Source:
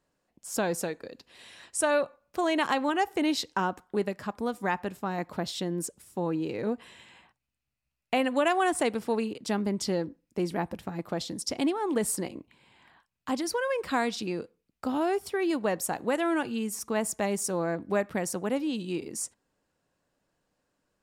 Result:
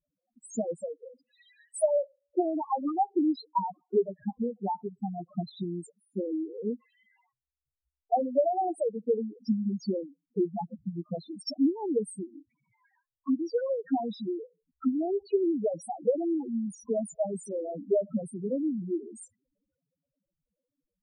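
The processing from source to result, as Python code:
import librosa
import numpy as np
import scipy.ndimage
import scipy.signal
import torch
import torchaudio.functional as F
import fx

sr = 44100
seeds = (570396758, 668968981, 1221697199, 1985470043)

y = fx.transient(x, sr, attack_db=10, sustain_db=fx.steps((0.0, -4.0), (13.87, 6.0)))
y = fx.spec_topn(y, sr, count=2)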